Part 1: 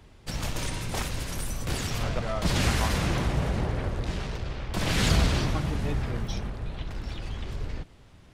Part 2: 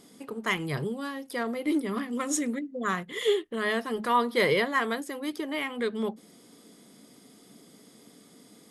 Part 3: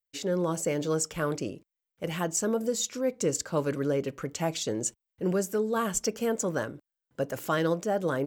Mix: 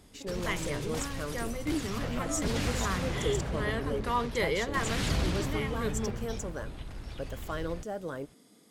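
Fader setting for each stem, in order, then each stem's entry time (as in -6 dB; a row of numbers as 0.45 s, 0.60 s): -7.0 dB, -6.0 dB, -9.0 dB; 0.00 s, 0.00 s, 0.00 s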